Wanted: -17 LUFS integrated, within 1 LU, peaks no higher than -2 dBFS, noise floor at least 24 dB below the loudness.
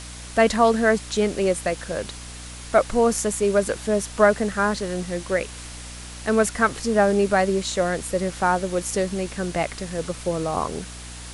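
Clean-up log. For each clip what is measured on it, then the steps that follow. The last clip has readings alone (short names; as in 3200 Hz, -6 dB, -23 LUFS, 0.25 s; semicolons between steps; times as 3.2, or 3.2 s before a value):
hum 60 Hz; harmonics up to 300 Hz; hum level -38 dBFS; noise floor -38 dBFS; noise floor target -47 dBFS; loudness -22.5 LUFS; peak -4.0 dBFS; loudness target -17.0 LUFS
-> de-hum 60 Hz, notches 5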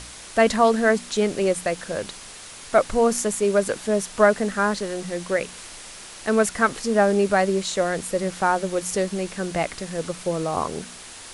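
hum none; noise floor -41 dBFS; noise floor target -47 dBFS
-> denoiser 6 dB, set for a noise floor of -41 dBFS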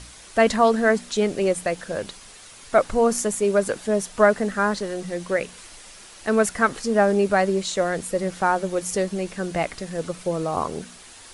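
noise floor -45 dBFS; noise floor target -47 dBFS
-> denoiser 6 dB, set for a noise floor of -45 dBFS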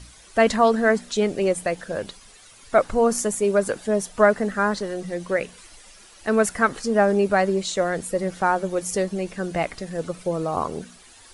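noise floor -49 dBFS; loudness -23.0 LUFS; peak -4.0 dBFS; loudness target -17.0 LUFS
-> gain +6 dB; limiter -2 dBFS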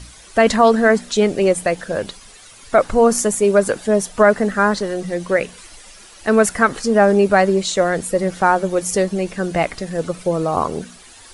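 loudness -17.5 LUFS; peak -2.0 dBFS; noise floor -43 dBFS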